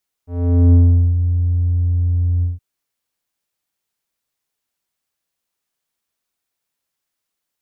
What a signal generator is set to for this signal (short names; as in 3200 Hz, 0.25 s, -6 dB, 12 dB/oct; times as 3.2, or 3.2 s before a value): synth note square F2 12 dB/oct, low-pass 110 Hz, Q 1, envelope 2.5 oct, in 0.89 s, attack 0.46 s, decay 0.41 s, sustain -8 dB, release 0.16 s, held 2.16 s